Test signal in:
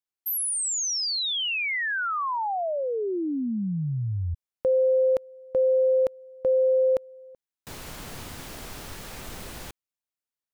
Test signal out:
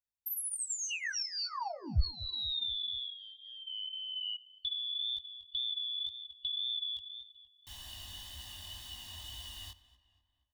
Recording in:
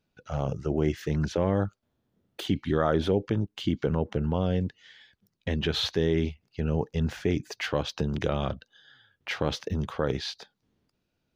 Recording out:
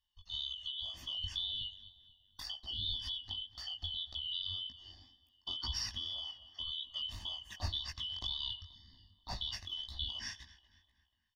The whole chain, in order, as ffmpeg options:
-filter_complex "[0:a]afftfilt=real='real(if(lt(b,272),68*(eq(floor(b/68),0)*1+eq(floor(b/68),1)*3+eq(floor(b/68),2)*0+eq(floor(b/68),3)*2)+mod(b,68),b),0)':imag='imag(if(lt(b,272),68*(eq(floor(b/68),0)*1+eq(floor(b/68),1)*3+eq(floor(b/68),2)*0+eq(floor(b/68),3)*2)+mod(b,68),b),0)':win_size=2048:overlap=0.75,asplit=2[s0][s1];[s1]adelay=241,lowpass=f=3700:p=1,volume=0.126,asplit=2[s2][s3];[s3]adelay=241,lowpass=f=3700:p=1,volume=0.51,asplit=2[s4][s5];[s5]adelay=241,lowpass=f=3700:p=1,volume=0.51,asplit=2[s6][s7];[s7]adelay=241,lowpass=f=3700:p=1,volume=0.51[s8];[s2][s4][s6][s8]amix=inputs=4:normalize=0[s9];[s0][s9]amix=inputs=2:normalize=0,flanger=delay=15.5:depth=6.2:speed=1.9,equalizer=f=850:t=o:w=2.4:g=-4,acompressor=threshold=0.0282:ratio=6:attack=39:release=139:knee=1:detection=rms,lowshelf=f=110:t=q:w=3:g=8.5,aecho=1:1:1.1:0.94,asplit=2[s10][s11];[s11]aecho=0:1:90:0.0668[s12];[s10][s12]amix=inputs=2:normalize=0,volume=0.422"

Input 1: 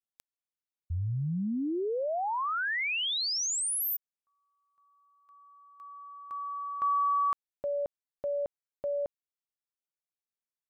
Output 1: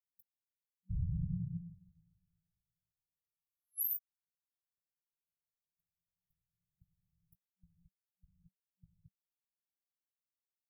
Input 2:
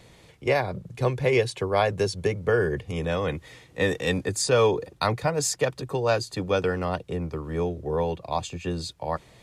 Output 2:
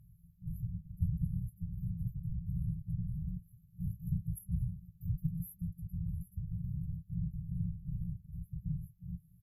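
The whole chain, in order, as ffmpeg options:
-filter_complex "[0:a]afftfilt=real='hypot(re,im)*cos(2*PI*random(0))':imag='hypot(re,im)*sin(2*PI*random(1))':win_size=512:overlap=0.75,afftfilt=real='re*(1-between(b*sr/4096,190,11000))':imag='im*(1-between(b*sr/4096,190,11000))':win_size=4096:overlap=0.75,asplit=2[s0][s1];[s1]adelay=18,volume=0.251[s2];[s0][s2]amix=inputs=2:normalize=0,volume=1.26"

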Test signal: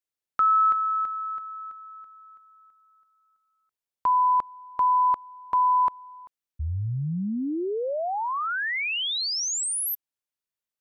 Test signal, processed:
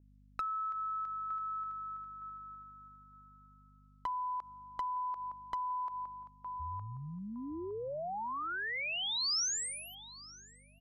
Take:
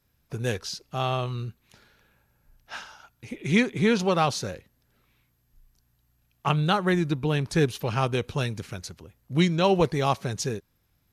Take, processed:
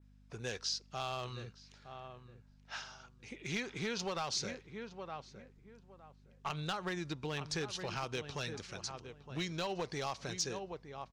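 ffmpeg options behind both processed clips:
-filter_complex "[0:a]aeval=exprs='val(0)+0.00562*(sin(2*PI*50*n/s)+sin(2*PI*2*50*n/s)/2+sin(2*PI*3*50*n/s)/3+sin(2*PI*4*50*n/s)/4+sin(2*PI*5*50*n/s)/5)':c=same,lowpass=f=7700:w=0.5412,lowpass=f=7700:w=1.3066,lowshelf=f=380:g=-10.5,asplit=2[s0][s1];[s1]adelay=913,lowpass=f=1600:p=1,volume=0.251,asplit=2[s2][s3];[s3]adelay=913,lowpass=f=1600:p=1,volume=0.23,asplit=2[s4][s5];[s5]adelay=913,lowpass=f=1600:p=1,volume=0.23[s6];[s0][s2][s4][s6]amix=inputs=4:normalize=0,acompressor=threshold=0.0282:ratio=12:attack=67:release=89:knee=6:detection=rms,aeval=exprs='clip(val(0),-1,0.0531)':c=same,adynamicequalizer=threshold=0.00224:dfrequency=5200:dqfactor=1.5:tfrequency=5200:tqfactor=1.5:attack=5:release=100:ratio=0.375:range=3:mode=boostabove:tftype=bell,volume=0.501"

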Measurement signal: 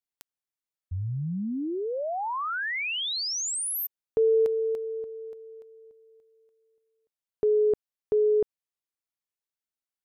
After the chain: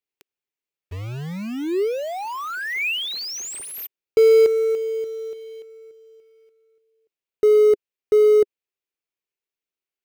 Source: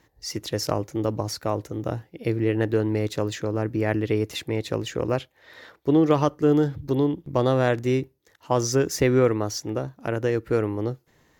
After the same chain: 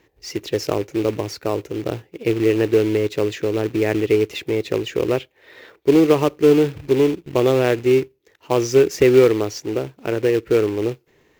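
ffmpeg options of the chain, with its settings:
-af "acrusher=bits=3:mode=log:mix=0:aa=0.000001,equalizer=f=400:t=o:w=0.67:g=11,equalizer=f=2500:t=o:w=0.67:g=8,equalizer=f=10000:t=o:w=0.67:g=-5,volume=0.891"

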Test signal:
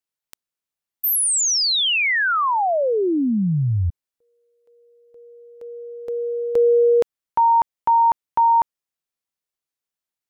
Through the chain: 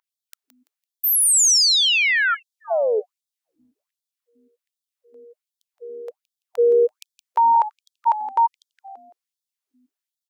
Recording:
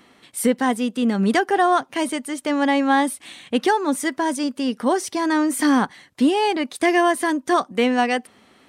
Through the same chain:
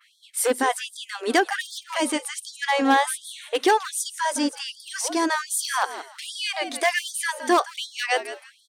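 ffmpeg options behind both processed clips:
-filter_complex "[0:a]adynamicequalizer=threshold=0.0112:dfrequency=6500:dqfactor=0.73:tfrequency=6500:tqfactor=0.73:attack=5:release=100:ratio=0.375:range=2:mode=boostabove:tftype=bell,aeval=exprs='0.316*(abs(mod(val(0)/0.316+3,4)-2)-1)':c=same,aeval=exprs='val(0)+0.00891*(sin(2*PI*50*n/s)+sin(2*PI*2*50*n/s)/2+sin(2*PI*3*50*n/s)/3+sin(2*PI*4*50*n/s)/4+sin(2*PI*5*50*n/s)/5)':c=same,asplit=2[s0][s1];[s1]asplit=3[s2][s3][s4];[s2]adelay=168,afreqshift=-73,volume=0.224[s5];[s3]adelay=336,afreqshift=-146,volume=0.0668[s6];[s4]adelay=504,afreqshift=-219,volume=0.0202[s7];[s5][s6][s7]amix=inputs=3:normalize=0[s8];[s0][s8]amix=inputs=2:normalize=0,afftfilt=real='re*gte(b*sr/1024,220*pow(3300/220,0.5+0.5*sin(2*PI*1.3*pts/sr)))':imag='im*gte(b*sr/1024,220*pow(3300/220,0.5+0.5*sin(2*PI*1.3*pts/sr)))':win_size=1024:overlap=0.75"

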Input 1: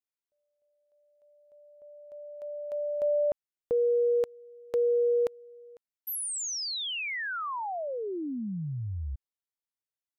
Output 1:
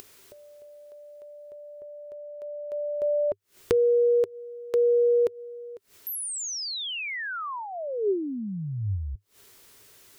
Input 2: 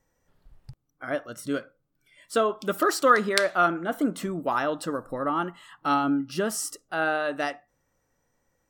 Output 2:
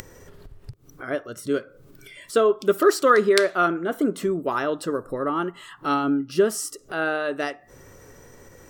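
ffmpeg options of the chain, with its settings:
-af "acompressor=mode=upward:threshold=0.01:ratio=4:attack=18:release=125:knee=2.83:detection=peak,equalizer=f=100:t=o:w=0.33:g=7,equalizer=f=400:t=o:w=0.33:g=11,equalizer=f=800:t=o:w=0.33:g=-5,volume=1.12"

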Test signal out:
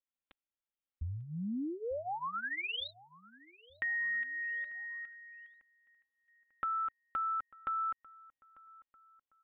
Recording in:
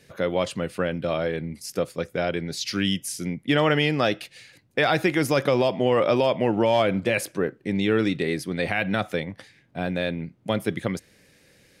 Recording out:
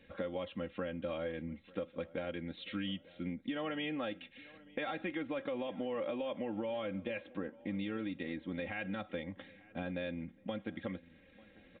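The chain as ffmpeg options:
-filter_complex "[0:a]lowshelf=f=170:g=4.5,aecho=1:1:3.7:0.83,alimiter=limit=0.211:level=0:latency=1:release=486,acompressor=threshold=0.0282:ratio=2.5,asplit=2[s0][s1];[s1]adelay=895,lowpass=f=2700:p=1,volume=0.0841,asplit=2[s2][s3];[s3]adelay=895,lowpass=f=2700:p=1,volume=0.49,asplit=2[s4][s5];[s5]adelay=895,lowpass=f=2700:p=1,volume=0.49[s6];[s2][s4][s6]amix=inputs=3:normalize=0[s7];[s0][s7]amix=inputs=2:normalize=0,aresample=8000,aresample=44100,volume=0.422"

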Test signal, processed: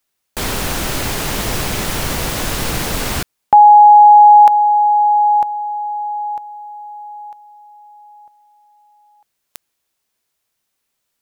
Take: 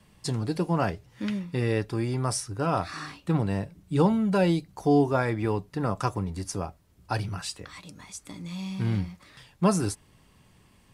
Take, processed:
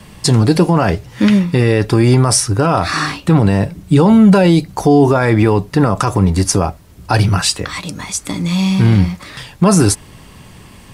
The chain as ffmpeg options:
-af "alimiter=level_in=11.2:limit=0.891:release=50:level=0:latency=1,volume=0.891"

